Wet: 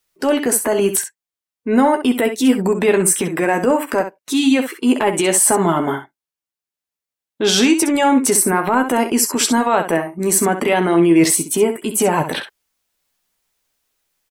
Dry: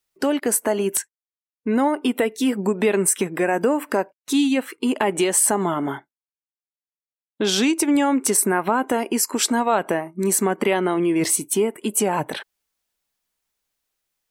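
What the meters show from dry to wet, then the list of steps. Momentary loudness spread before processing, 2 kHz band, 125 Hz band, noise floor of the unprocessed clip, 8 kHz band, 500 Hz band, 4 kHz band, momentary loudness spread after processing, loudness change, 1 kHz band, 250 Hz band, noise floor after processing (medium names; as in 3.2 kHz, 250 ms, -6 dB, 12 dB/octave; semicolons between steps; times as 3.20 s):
7 LU, +5.0 dB, +6.0 dB, under -85 dBFS, +4.5 dB, +5.0 dB, +5.5 dB, 8 LU, +5.0 dB, +5.0 dB, +5.0 dB, under -85 dBFS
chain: in parallel at +3 dB: peak limiter -13.5 dBFS, peak gain reduction 7.5 dB; on the sum: transient shaper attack -6 dB, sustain -2 dB; early reflections 12 ms -7.5 dB, 65 ms -9.5 dB; trim -1 dB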